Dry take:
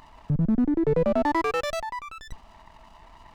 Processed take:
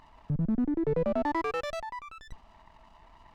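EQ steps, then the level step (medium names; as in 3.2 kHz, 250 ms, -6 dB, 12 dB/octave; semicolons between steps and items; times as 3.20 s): treble shelf 6.4 kHz -8 dB; -5.5 dB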